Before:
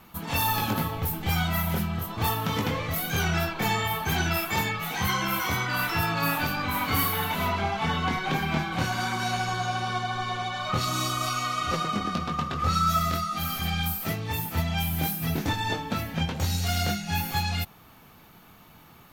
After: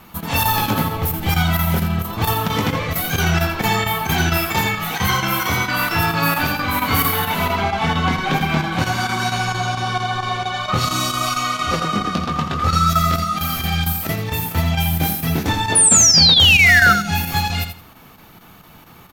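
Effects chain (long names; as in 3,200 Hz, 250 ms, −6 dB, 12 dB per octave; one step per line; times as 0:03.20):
sound drawn into the spectrogram fall, 0:15.75–0:16.93, 1,300–10,000 Hz −19 dBFS
square-wave tremolo 4.4 Hz, depth 65%, duty 90%
repeating echo 84 ms, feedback 22%, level −9 dB
level +7.5 dB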